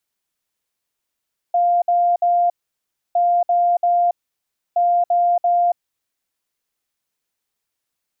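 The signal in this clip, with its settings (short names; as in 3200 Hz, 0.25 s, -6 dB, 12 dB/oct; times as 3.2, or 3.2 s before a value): beep pattern sine 700 Hz, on 0.28 s, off 0.06 s, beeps 3, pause 0.65 s, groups 3, -13 dBFS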